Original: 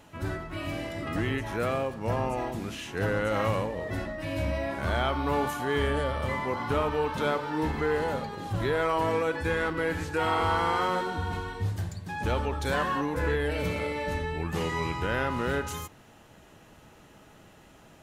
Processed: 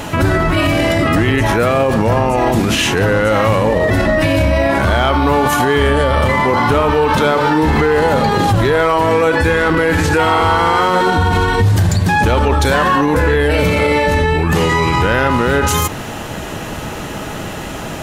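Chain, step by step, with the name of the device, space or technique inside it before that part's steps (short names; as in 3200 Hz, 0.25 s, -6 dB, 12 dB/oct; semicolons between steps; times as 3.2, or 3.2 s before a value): loud club master (compressor 2:1, threshold -32 dBFS, peak gain reduction 5.5 dB; hard clip -24 dBFS, distortion -29 dB; maximiser +33.5 dB); gain -4.5 dB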